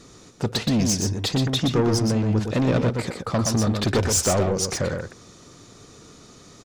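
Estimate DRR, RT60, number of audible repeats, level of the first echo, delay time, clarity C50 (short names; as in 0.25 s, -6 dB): none, none, 1, -5.0 dB, 0.122 s, none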